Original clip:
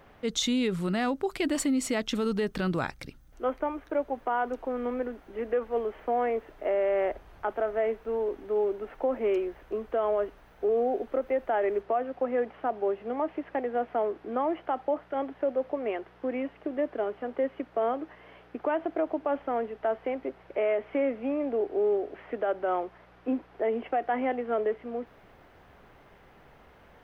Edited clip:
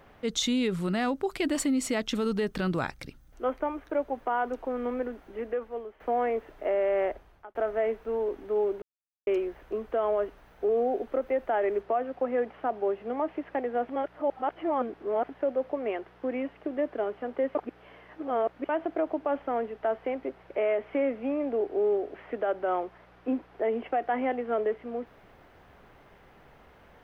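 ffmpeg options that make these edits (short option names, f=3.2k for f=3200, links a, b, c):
-filter_complex "[0:a]asplit=9[a][b][c][d][e][f][g][h][i];[a]atrim=end=6,asetpts=PTS-STARTPTS,afade=t=out:st=5.26:d=0.74:silence=0.177828[j];[b]atrim=start=6:end=7.55,asetpts=PTS-STARTPTS,afade=t=in:d=0.004:c=hsin:silence=0.177828,afade=t=out:st=1.04:d=0.51[k];[c]atrim=start=7.55:end=8.82,asetpts=PTS-STARTPTS,afade=t=in:d=0.004:c=hsin,afade=t=out:st=1.266:d=0.004:c=hsin[l];[d]atrim=start=8.82:end=9.27,asetpts=PTS-STARTPTS,volume=0[m];[e]atrim=start=9.27:end=13.892,asetpts=PTS-STARTPTS,afade=t=in:d=0.004:c=hsin[n];[f]atrim=start=13.888:end=15.292,asetpts=PTS-STARTPTS,areverse[o];[g]atrim=start=15.288:end=17.552[p];[h]atrim=start=17.548:end=18.692,asetpts=PTS-STARTPTS,areverse[q];[i]atrim=start=18.688[r];[j][k][l][m][n]concat=n=5:v=0:a=1[s];[s][o]acrossfade=d=0.004:c1=hsin:c2=hsin[t];[t][p]acrossfade=d=0.004:c1=hsin:c2=hsin[u];[u][q]acrossfade=d=0.004:c1=hsin:c2=hsin[v];[v][r]acrossfade=d=0.004:c1=hsin:c2=hsin"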